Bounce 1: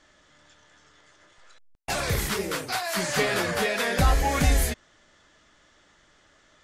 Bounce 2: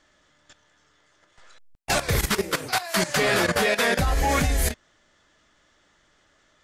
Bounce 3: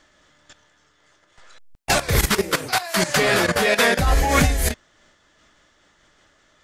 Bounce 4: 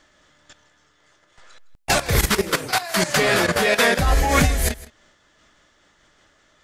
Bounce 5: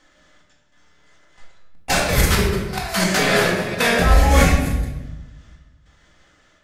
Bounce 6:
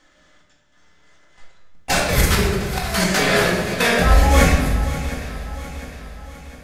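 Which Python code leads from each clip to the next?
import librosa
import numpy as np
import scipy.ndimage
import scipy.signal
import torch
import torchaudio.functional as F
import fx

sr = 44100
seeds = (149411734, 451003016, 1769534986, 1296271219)

y1 = fx.level_steps(x, sr, step_db=14)
y1 = y1 * librosa.db_to_amplitude(7.0)
y2 = fx.am_noise(y1, sr, seeds[0], hz=5.7, depth_pct=55)
y2 = y2 * librosa.db_to_amplitude(7.0)
y3 = y2 + 10.0 ** (-19.5 / 20.0) * np.pad(y2, (int(161 * sr / 1000.0), 0))[:len(y2)]
y4 = fx.step_gate(y3, sr, bpm=146, pattern='xxxx...xxx', floor_db=-12.0, edge_ms=4.5)
y4 = fx.room_shoebox(y4, sr, seeds[1], volume_m3=520.0, walls='mixed', distance_m=2.0)
y4 = y4 * librosa.db_to_amplitude(-3.0)
y5 = fx.echo_swing(y4, sr, ms=706, ratio=3, feedback_pct=48, wet_db=-14)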